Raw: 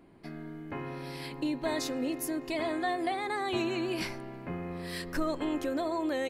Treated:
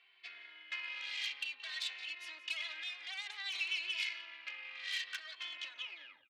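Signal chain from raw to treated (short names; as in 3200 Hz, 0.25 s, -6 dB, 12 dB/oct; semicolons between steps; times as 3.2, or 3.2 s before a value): tape stop at the end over 0.62 s; Chebyshev low-pass 3400 Hz, order 3; tilt +2 dB/oct; limiter -27 dBFS, peak gain reduction 5 dB; compressor 4:1, threshold -40 dBFS, peak gain reduction 7.5 dB; outdoor echo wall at 30 m, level -14 dB; added harmonics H 6 -12 dB, 8 -20 dB, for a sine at -29.5 dBFS; resonant high-pass 2600 Hz, resonance Q 1.7; endless flanger 2.2 ms -0.58 Hz; gain +7 dB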